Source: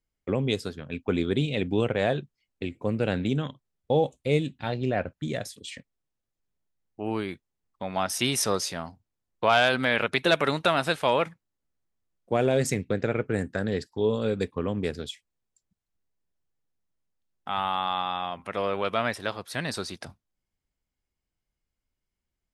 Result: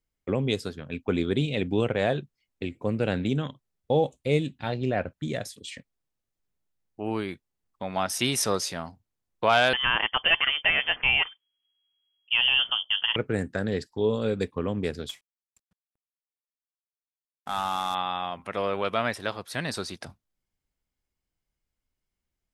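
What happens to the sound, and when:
0:09.73–0:13.16: voice inversion scrambler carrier 3,300 Hz
0:15.09–0:17.95: variable-slope delta modulation 64 kbit/s

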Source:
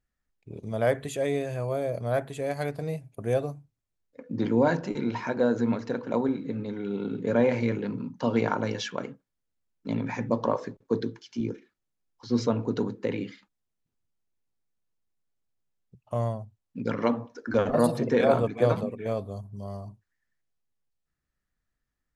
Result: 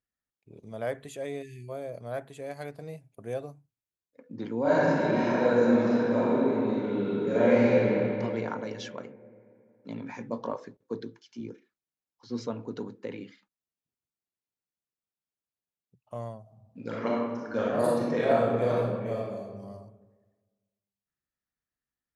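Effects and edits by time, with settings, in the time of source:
0:01.42–0:01.69: time-frequency box erased 410–1,700 Hz
0:04.61–0:07.86: thrown reverb, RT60 2.9 s, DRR −11 dB
0:10.00–0:10.54: double-tracking delay 22 ms −9 dB
0:16.41–0:19.60: thrown reverb, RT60 1.4 s, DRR −4.5 dB
whole clip: high-pass filter 140 Hz 6 dB per octave; level −7.5 dB

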